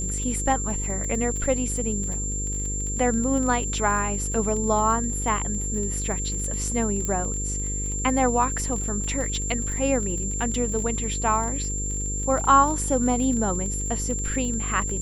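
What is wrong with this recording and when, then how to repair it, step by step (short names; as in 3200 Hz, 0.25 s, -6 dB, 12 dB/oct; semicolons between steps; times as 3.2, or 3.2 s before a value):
buzz 50 Hz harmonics 10 -30 dBFS
crackle 29/s -30 dBFS
tone 7300 Hz -29 dBFS
7.05 pop -15 dBFS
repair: de-click; de-hum 50 Hz, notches 10; notch 7300 Hz, Q 30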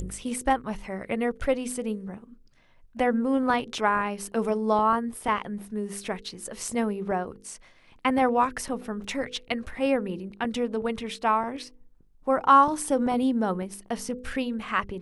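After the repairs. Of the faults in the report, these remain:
none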